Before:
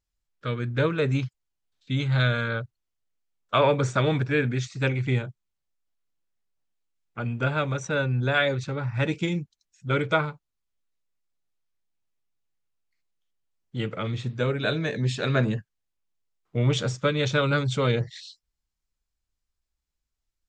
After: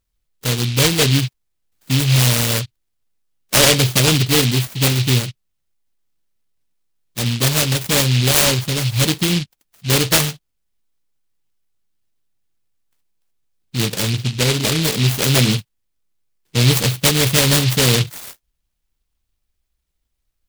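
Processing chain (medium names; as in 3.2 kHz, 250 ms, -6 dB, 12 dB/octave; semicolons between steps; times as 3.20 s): in parallel at -2 dB: peak limiter -16.5 dBFS, peak gain reduction 7.5 dB; 14.10–14.83 s: on the sum: boxcar filter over 18 samples; delay time shaken by noise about 3.3 kHz, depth 0.35 ms; trim +4.5 dB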